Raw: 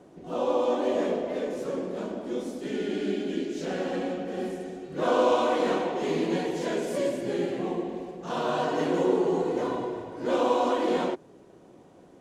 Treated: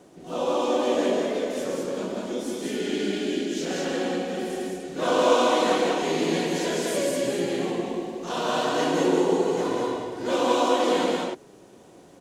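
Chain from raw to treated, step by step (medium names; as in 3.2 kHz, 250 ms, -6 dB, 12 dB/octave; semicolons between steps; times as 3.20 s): treble shelf 2.8 kHz +10.5 dB; hum notches 50/100/150 Hz; on a send: loudspeakers at several distances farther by 46 m -10 dB, 67 m -2 dB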